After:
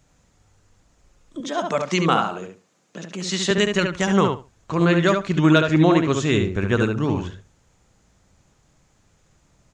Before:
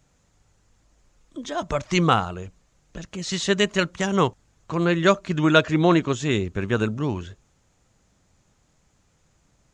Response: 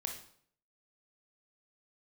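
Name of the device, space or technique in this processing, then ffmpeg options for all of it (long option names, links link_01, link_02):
clipper into limiter: -filter_complex "[0:a]asoftclip=type=hard:threshold=-4dB,alimiter=limit=-9dB:level=0:latency=1:release=149,asettb=1/sr,asplit=3[link_01][link_02][link_03];[link_01]atrim=end=1.404[link_04];[link_02]atrim=start=1.4:end=3.51,asetpts=PTS-STARTPTS,afade=type=in:duration=0.004:curve=qsin,afade=type=out:start_time=2.106:duration=0.004:curve=qsin,highpass=frequency=170:width=0.5412,highpass=frequency=170:width=1.3066[link_05];[link_03]atrim=start=3.506[link_06];[link_04][link_05]acrossfade=duration=0.004:curve1=hsin:curve2=qsin[link_07];[link_07][link_06]acrossfade=duration=0.004:curve1=qsin:curve2=hsin,asplit=2[link_08][link_09];[link_09]adelay=71,lowpass=frequency=2700:poles=1,volume=-4dB,asplit=2[link_10][link_11];[link_11]adelay=71,lowpass=frequency=2700:poles=1,volume=0.18,asplit=2[link_12][link_13];[link_13]adelay=71,lowpass=frequency=2700:poles=1,volume=0.18[link_14];[link_08][link_10][link_12][link_14]amix=inputs=4:normalize=0,volume=2.5dB"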